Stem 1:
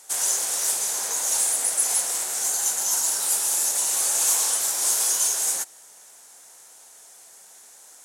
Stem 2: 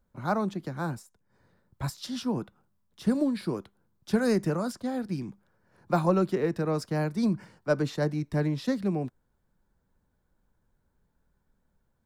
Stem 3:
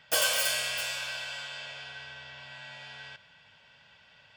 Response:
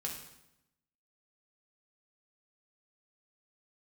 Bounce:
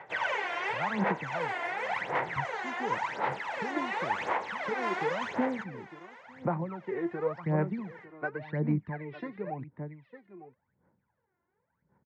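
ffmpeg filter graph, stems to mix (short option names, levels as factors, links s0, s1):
-filter_complex "[0:a]volume=0.708,asplit=2[s0][s1];[s1]volume=0.1[s2];[1:a]adelay=550,volume=0.501,asplit=2[s3][s4];[s4]volume=0.119[s5];[2:a]volume=0.398[s6];[s3][s6]amix=inputs=2:normalize=0,acompressor=threshold=0.02:ratio=6,volume=1[s7];[s2][s5]amix=inputs=2:normalize=0,aecho=0:1:902:1[s8];[s0][s7][s8]amix=inputs=3:normalize=0,aphaser=in_gain=1:out_gain=1:delay=2.9:decay=0.79:speed=0.92:type=sinusoidal,highpass=f=100:w=0.5412,highpass=f=100:w=1.3066,equalizer=f=510:t=q:w=4:g=4,equalizer=f=920:t=q:w=4:g=7,equalizer=f=2000:t=q:w=4:g=9,lowpass=f=2400:w=0.5412,lowpass=f=2400:w=1.3066,alimiter=limit=0.119:level=0:latency=1:release=442"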